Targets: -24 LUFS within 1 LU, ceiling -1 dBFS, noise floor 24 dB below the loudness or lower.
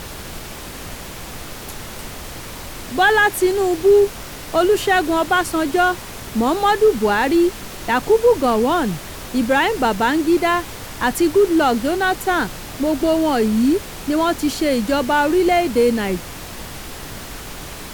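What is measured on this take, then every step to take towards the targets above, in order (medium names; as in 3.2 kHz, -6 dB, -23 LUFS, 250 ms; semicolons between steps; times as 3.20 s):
noise floor -33 dBFS; noise floor target -42 dBFS; loudness -17.5 LUFS; peak level -4.0 dBFS; loudness target -24.0 LUFS
-> noise print and reduce 9 dB; trim -6.5 dB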